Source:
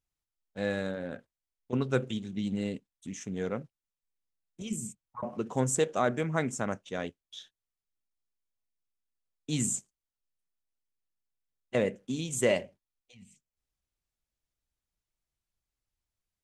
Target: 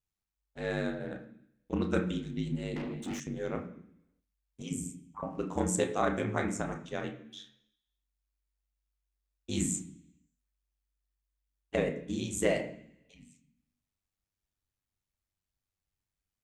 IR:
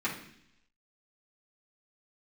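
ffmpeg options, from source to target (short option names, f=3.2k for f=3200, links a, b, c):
-filter_complex "[0:a]aeval=exprs='val(0)*sin(2*PI*49*n/s)':c=same,asplit=2[a][b];[1:a]atrim=start_sample=2205,adelay=27[c];[b][c]afir=irnorm=-1:irlink=0,volume=-11dB[d];[a][d]amix=inputs=2:normalize=0,asettb=1/sr,asplit=3[e][f][g];[e]atrim=end=2.764[h];[f]atrim=start=2.76:end=3.2,asetpts=PTS-STARTPTS,afade=t=in:d=0.004:c=qsin,afade=t=out:st=0.436:d=0.004:c=qsin,asplit=2[i][j];[j]highpass=f=720:p=1,volume=30dB,asoftclip=type=tanh:threshold=-29dB[k];[i][k]amix=inputs=2:normalize=0,lowpass=f=2.4k:p=1,volume=-6dB[l];[g]atrim=start=3.196[m];[h][l]acrossfade=d=0.004:c1=hsin:c2=qsin[n];[n][m]acrossfade=d=0.004:c1=qsin:c2=hsin"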